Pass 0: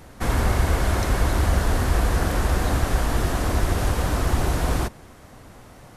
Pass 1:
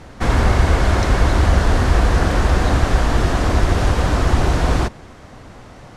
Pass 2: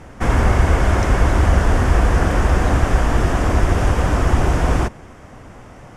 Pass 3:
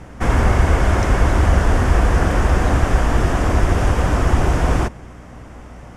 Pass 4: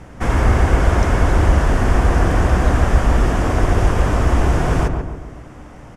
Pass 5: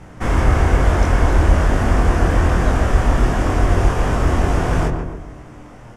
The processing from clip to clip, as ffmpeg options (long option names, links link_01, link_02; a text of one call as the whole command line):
ffmpeg -i in.wav -af "lowpass=6300,volume=6dB" out.wav
ffmpeg -i in.wav -af "equalizer=frequency=4100:width_type=o:width=0.43:gain=-11.5" out.wav
ffmpeg -i in.wav -af "aeval=exprs='val(0)+0.0112*(sin(2*PI*60*n/s)+sin(2*PI*2*60*n/s)/2+sin(2*PI*3*60*n/s)/3+sin(2*PI*4*60*n/s)/4+sin(2*PI*5*60*n/s)/5)':channel_layout=same" out.wav
ffmpeg -i in.wav -filter_complex "[0:a]asplit=2[link_01][link_02];[link_02]adelay=140,lowpass=frequency=1300:poles=1,volume=-4dB,asplit=2[link_03][link_04];[link_04]adelay=140,lowpass=frequency=1300:poles=1,volume=0.52,asplit=2[link_05][link_06];[link_06]adelay=140,lowpass=frequency=1300:poles=1,volume=0.52,asplit=2[link_07][link_08];[link_08]adelay=140,lowpass=frequency=1300:poles=1,volume=0.52,asplit=2[link_09][link_10];[link_10]adelay=140,lowpass=frequency=1300:poles=1,volume=0.52,asplit=2[link_11][link_12];[link_12]adelay=140,lowpass=frequency=1300:poles=1,volume=0.52,asplit=2[link_13][link_14];[link_14]adelay=140,lowpass=frequency=1300:poles=1,volume=0.52[link_15];[link_01][link_03][link_05][link_07][link_09][link_11][link_13][link_15]amix=inputs=8:normalize=0,volume=-1dB" out.wav
ffmpeg -i in.wav -af "flanger=delay=22.5:depth=2.6:speed=1.1,volume=2.5dB" out.wav